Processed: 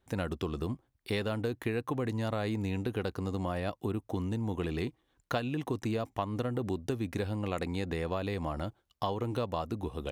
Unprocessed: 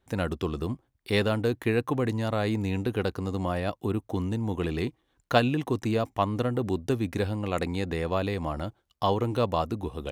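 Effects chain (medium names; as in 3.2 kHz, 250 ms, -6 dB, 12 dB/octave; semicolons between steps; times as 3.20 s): compression 5:1, threshold -27 dBFS, peak gain reduction 11 dB; trim -2 dB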